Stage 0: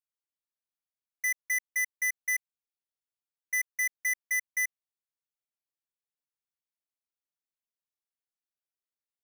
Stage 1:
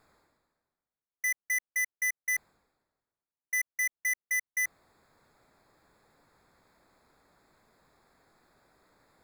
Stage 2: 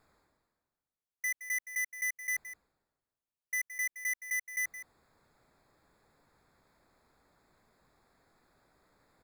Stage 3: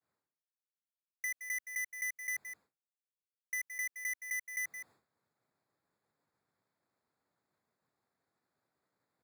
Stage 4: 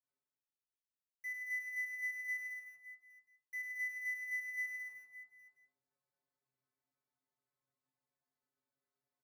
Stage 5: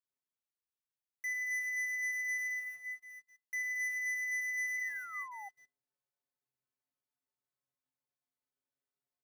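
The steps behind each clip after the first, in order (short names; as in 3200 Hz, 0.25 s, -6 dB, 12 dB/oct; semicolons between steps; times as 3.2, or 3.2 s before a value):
Wiener smoothing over 15 samples; reverse; upward compressor, threshold -36 dBFS; reverse
low shelf 140 Hz +4 dB; echo 0.169 s -12.5 dB; gain -4 dB
expander -59 dBFS; HPF 93 Hz 24 dB/oct; compressor, threshold -36 dBFS, peak gain reduction 4.5 dB
metallic resonator 130 Hz, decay 0.34 s, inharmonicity 0.008; on a send: reverse bouncing-ball echo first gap 0.1 s, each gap 1.25×, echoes 5; on the sum: gain -1.5 dB
sample leveller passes 3; painted sound fall, 4.77–5.49, 770–2100 Hz -47 dBFS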